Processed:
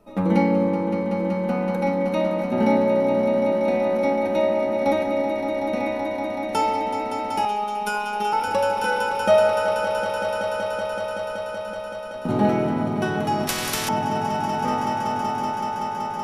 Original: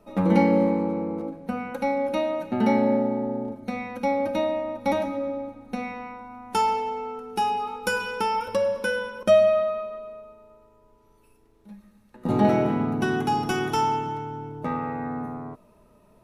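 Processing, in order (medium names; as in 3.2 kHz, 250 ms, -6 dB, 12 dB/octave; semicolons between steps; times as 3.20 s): echo with a slow build-up 189 ms, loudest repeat 5, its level -9 dB; 7.45–8.33 s: robot voice 208 Hz; 13.47–13.89 s: spectrum-flattening compressor 4:1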